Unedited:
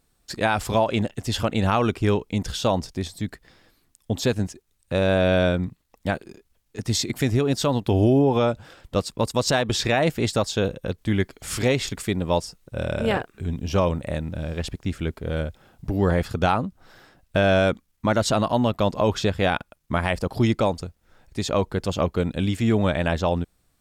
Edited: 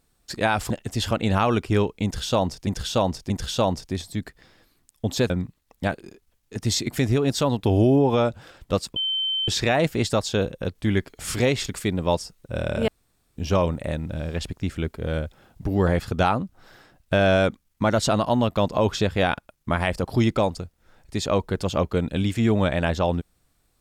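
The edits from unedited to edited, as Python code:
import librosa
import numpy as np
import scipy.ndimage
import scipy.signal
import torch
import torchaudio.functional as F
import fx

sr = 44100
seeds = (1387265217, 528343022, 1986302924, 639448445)

y = fx.edit(x, sr, fx.cut(start_s=0.7, length_s=0.32),
    fx.repeat(start_s=2.36, length_s=0.63, count=3),
    fx.cut(start_s=4.36, length_s=1.17),
    fx.bleep(start_s=9.19, length_s=0.52, hz=3090.0, db=-22.0),
    fx.room_tone_fill(start_s=13.11, length_s=0.49), tone=tone)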